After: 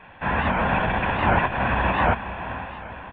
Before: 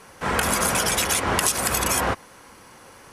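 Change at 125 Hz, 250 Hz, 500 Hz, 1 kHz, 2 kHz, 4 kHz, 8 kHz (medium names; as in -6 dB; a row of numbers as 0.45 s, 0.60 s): +5.5 dB, +3.0 dB, +1.5 dB, +3.5 dB, +2.0 dB, -10.0 dB, under -40 dB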